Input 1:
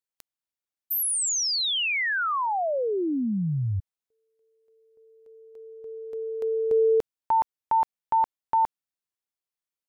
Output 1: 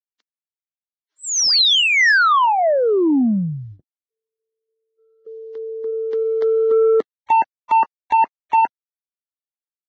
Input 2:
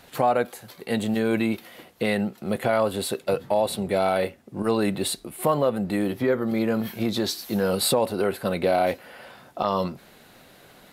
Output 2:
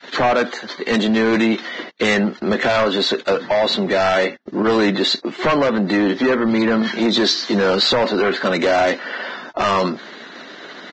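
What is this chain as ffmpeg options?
-filter_complex "[0:a]highpass=f=240:w=0.5412,highpass=f=240:w=1.3066,equalizer=f=520:t=q:w=4:g=-5,equalizer=f=780:t=q:w=4:g=-7,equalizer=f=1.8k:t=q:w=4:g=4,equalizer=f=2.5k:t=q:w=4:g=-7,lowpass=f=4.9k:w=0.5412,lowpass=f=4.9k:w=1.3066,asplit=2[a][b];[b]acompressor=threshold=-32dB:ratio=12:attack=0.19:release=28:knee=6:detection=peak,volume=1.5dB[c];[a][c]amix=inputs=2:normalize=0,agate=range=-29dB:threshold=-51dB:ratio=16:release=43:detection=peak,adynamicequalizer=threshold=0.0141:dfrequency=390:dqfactor=2.4:tfrequency=390:tqfactor=2.4:attack=5:release=100:ratio=0.417:range=2:mode=cutabove:tftype=bell,aresample=16000,aeval=exprs='0.266*sin(PI/2*2.24*val(0)/0.266)':c=same,aresample=44100" -ar 22050 -c:a libvorbis -b:a 16k

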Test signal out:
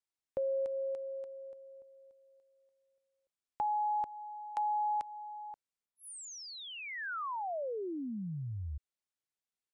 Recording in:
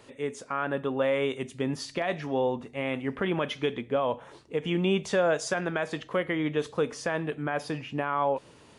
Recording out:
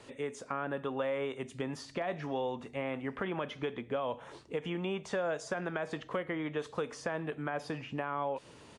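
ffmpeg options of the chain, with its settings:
-filter_complex "[0:a]acrossover=split=650|1600[a][b][c];[a]acompressor=threshold=-37dB:ratio=4[d];[b]acompressor=threshold=-38dB:ratio=4[e];[c]acompressor=threshold=-48dB:ratio=4[f];[d][e][f]amix=inputs=3:normalize=0,aresample=22050,aresample=44100"

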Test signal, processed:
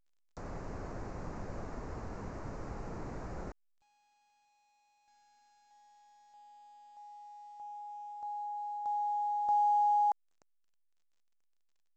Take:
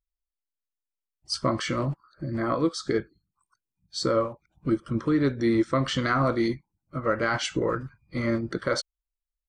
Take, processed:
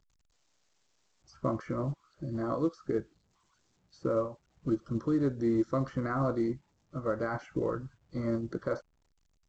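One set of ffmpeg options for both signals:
-filter_complex "[0:a]acrossover=split=3600[a][b];[a]lowpass=1.1k[c];[b]acompressor=threshold=-54dB:ratio=16[d];[c][d]amix=inputs=2:normalize=0,volume=-5dB" -ar 16000 -c:a pcm_alaw

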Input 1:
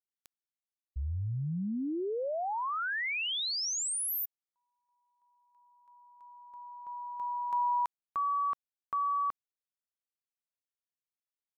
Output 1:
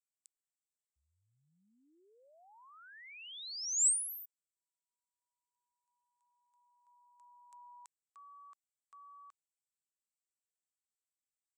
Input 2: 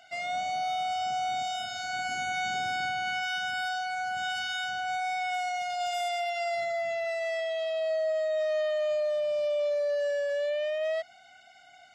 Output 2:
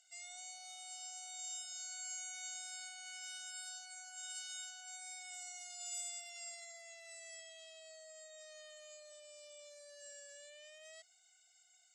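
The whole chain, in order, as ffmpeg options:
-af "bandpass=f=7.8k:t=q:w=6.1:csg=0,volume=8dB"

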